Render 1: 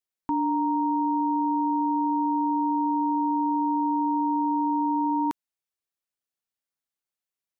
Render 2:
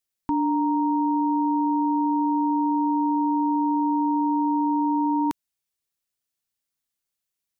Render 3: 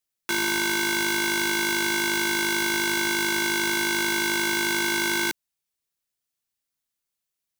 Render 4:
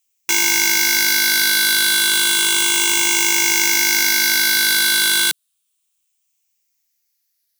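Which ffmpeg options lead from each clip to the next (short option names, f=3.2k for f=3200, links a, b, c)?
-af "equalizer=f=820:w=0.33:g=-7,volume=7.5dB"
-af "aeval=exprs='(mod(10*val(0)+1,2)-1)/10':c=same"
-af "afftfilt=real='re*pow(10,8/40*sin(2*PI*(0.69*log(max(b,1)*sr/1024/100)/log(2)-(-0.32)*(pts-256)/sr)))':imag='im*pow(10,8/40*sin(2*PI*(0.69*log(max(b,1)*sr/1024/100)/log(2)-(-0.32)*(pts-256)/sr)))':win_size=1024:overlap=0.75,tiltshelf=f=1.5k:g=-9,volume=4dB"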